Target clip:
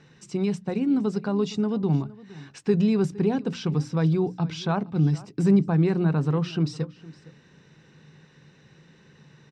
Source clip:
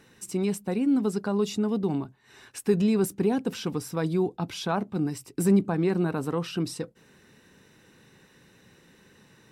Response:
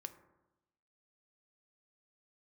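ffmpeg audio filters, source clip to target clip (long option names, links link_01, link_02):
-filter_complex "[0:a]lowpass=frequency=6200:width=0.5412,lowpass=frequency=6200:width=1.3066,equalizer=frequency=150:width=4.6:gain=14.5,bandreject=frequency=60:width_type=h:width=6,bandreject=frequency=120:width_type=h:width=6,bandreject=frequency=180:width_type=h:width=6,bandreject=frequency=240:width_type=h:width=6,bandreject=frequency=300:width_type=h:width=6,asplit=2[link_01][link_02];[link_02]aecho=0:1:463:0.1[link_03];[link_01][link_03]amix=inputs=2:normalize=0"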